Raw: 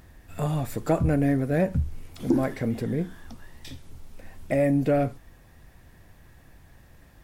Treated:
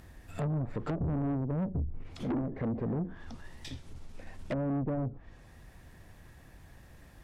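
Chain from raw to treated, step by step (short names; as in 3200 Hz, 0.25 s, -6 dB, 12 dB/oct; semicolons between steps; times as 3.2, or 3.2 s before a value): treble ducked by the level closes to 300 Hz, closed at -21.5 dBFS; tube stage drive 28 dB, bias 0.3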